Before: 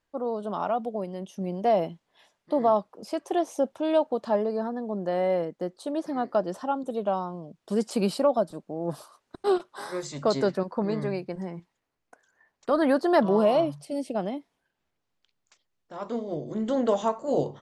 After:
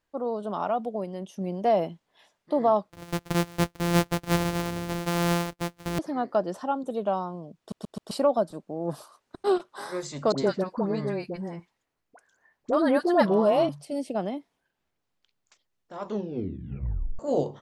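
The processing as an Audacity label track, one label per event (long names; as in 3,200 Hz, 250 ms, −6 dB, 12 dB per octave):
2.900000	5.990000	samples sorted by size in blocks of 256 samples
7.590000	7.590000	stutter in place 0.13 s, 4 plays
10.320000	13.690000	all-pass dispersion highs, late by 58 ms, half as late at 870 Hz
16.030000	16.030000	tape stop 1.16 s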